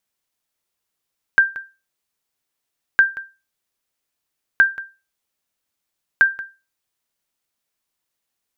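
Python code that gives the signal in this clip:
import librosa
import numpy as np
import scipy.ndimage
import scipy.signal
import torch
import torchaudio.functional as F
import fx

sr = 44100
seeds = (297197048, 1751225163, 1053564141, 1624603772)

y = fx.sonar_ping(sr, hz=1580.0, decay_s=0.28, every_s=1.61, pings=4, echo_s=0.18, echo_db=-17.0, level_db=-4.5)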